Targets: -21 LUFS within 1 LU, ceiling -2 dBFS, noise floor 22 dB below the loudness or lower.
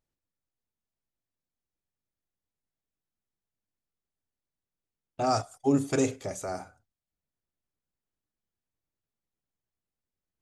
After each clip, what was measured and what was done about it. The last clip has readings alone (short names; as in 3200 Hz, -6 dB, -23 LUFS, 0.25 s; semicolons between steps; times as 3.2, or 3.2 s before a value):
loudness -29.0 LUFS; peak -13.0 dBFS; loudness target -21.0 LUFS
-> gain +8 dB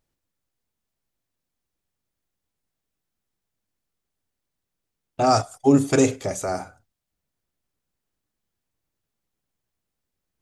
loudness -21.0 LUFS; peak -5.0 dBFS; noise floor -83 dBFS